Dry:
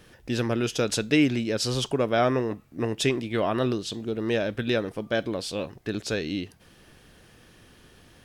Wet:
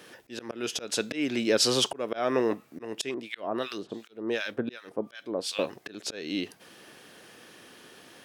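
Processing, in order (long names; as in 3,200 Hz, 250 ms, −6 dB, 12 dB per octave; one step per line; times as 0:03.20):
high-pass filter 280 Hz 12 dB per octave
volume swells 349 ms
0:03.14–0:05.59: two-band tremolo in antiphase 2.7 Hz, depth 100%, crossover 1,200 Hz
level +5 dB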